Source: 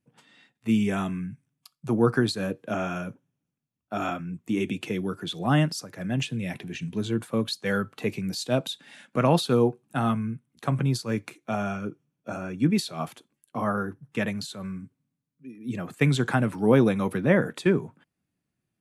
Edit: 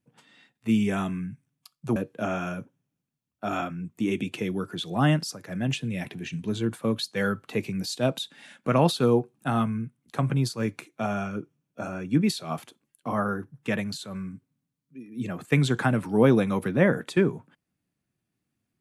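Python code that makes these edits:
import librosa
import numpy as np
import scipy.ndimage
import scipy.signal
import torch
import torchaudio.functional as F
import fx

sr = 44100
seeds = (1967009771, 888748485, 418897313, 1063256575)

y = fx.edit(x, sr, fx.cut(start_s=1.96, length_s=0.49), tone=tone)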